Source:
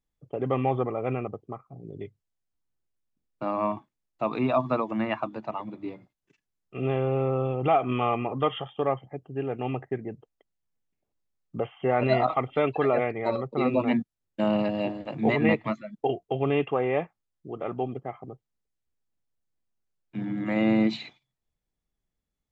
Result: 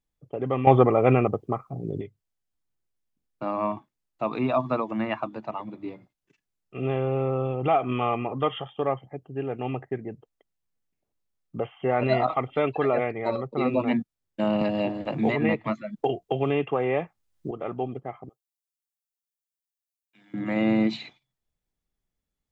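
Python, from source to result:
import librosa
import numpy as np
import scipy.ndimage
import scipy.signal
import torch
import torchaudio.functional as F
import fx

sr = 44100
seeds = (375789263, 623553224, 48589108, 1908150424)

y = fx.band_squash(x, sr, depth_pct=70, at=(14.61, 17.51))
y = fx.differentiator(y, sr, at=(18.29, 20.34))
y = fx.edit(y, sr, fx.clip_gain(start_s=0.67, length_s=1.34, db=10.0), tone=tone)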